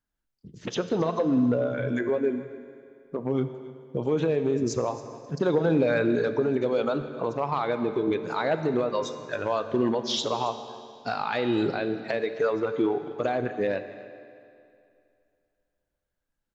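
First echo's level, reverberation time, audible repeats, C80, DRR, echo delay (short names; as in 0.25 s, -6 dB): -18.5 dB, 2.5 s, 1, 10.5 dB, 9.0 dB, 0.272 s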